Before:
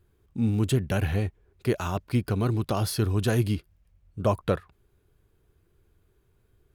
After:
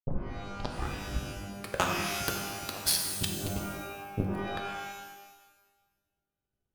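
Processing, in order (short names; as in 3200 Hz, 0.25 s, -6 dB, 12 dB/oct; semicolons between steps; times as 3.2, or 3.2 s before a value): tape start at the beginning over 1.80 s; negative-ratio compressor -31 dBFS, ratio -0.5; power-law curve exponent 2; shimmer reverb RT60 1.2 s, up +12 st, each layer -2 dB, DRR 2.5 dB; gain +7.5 dB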